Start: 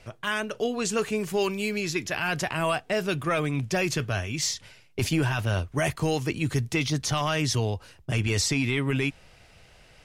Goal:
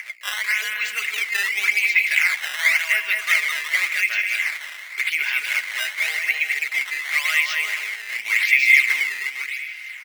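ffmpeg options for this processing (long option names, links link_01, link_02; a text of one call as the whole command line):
ffmpeg -i in.wav -filter_complex "[0:a]acrossover=split=4700[link_01][link_02];[link_02]acompressor=threshold=-44dB:ratio=4:attack=1:release=60[link_03];[link_01][link_03]amix=inputs=2:normalize=0,aecho=1:1:4.8:0.4,acompressor=mode=upward:threshold=-35dB:ratio=2.5,aeval=exprs='val(0)+0.00708*(sin(2*PI*60*n/s)+sin(2*PI*2*60*n/s)/2+sin(2*PI*3*60*n/s)/3+sin(2*PI*4*60*n/s)/4+sin(2*PI*5*60*n/s)/5)':channel_layout=same,aecho=1:1:210|367.5|485.6|574.2|640.7:0.631|0.398|0.251|0.158|0.1,acrusher=samples=11:mix=1:aa=0.000001:lfo=1:lforange=17.6:lforate=0.9,highpass=frequency=2100:width_type=q:width=10,volume=1dB" out.wav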